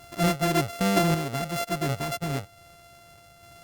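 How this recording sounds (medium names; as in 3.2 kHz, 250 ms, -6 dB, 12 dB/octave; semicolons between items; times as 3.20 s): a buzz of ramps at a fixed pitch in blocks of 64 samples; random-step tremolo; Opus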